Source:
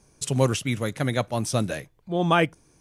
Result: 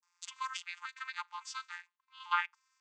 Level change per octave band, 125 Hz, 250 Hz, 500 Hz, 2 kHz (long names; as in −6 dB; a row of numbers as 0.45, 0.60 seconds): below −40 dB, below −40 dB, below −40 dB, −8.0 dB